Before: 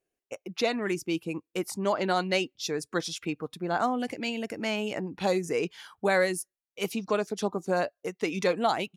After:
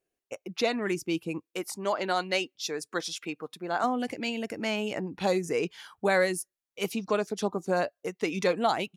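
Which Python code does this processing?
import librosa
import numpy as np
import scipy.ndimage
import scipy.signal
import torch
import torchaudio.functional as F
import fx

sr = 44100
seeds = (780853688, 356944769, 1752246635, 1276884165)

y = fx.highpass(x, sr, hz=410.0, slope=6, at=(1.45, 3.84))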